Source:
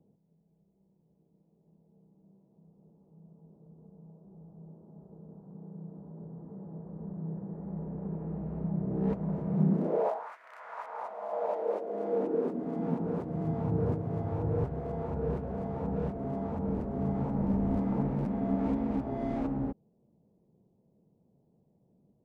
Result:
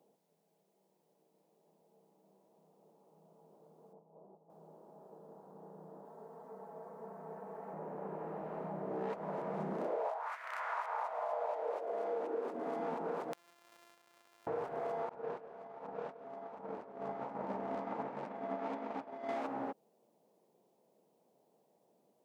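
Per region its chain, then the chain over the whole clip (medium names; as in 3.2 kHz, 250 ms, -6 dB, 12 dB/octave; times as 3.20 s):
3.93–4.50 s: low-pass 1.1 kHz 24 dB/octave + compressor with a negative ratio -54 dBFS, ratio -0.5
6.05–7.74 s: bass shelf 390 Hz -10.5 dB + comb 4.5 ms, depth 97%
13.33–14.47 s: sorted samples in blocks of 128 samples + inverted gate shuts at -36 dBFS, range -38 dB
15.09–19.29 s: expander -25 dBFS + distance through air 58 m + delay 172 ms -16 dB
whole clip: high-pass 720 Hz 12 dB/octave; compression, threshold -45 dBFS; trim +10 dB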